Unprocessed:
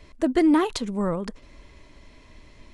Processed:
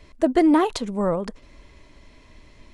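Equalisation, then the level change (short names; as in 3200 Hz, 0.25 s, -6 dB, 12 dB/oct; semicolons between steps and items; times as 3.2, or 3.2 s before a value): dynamic EQ 660 Hz, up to +7 dB, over -38 dBFS, Q 1.2; 0.0 dB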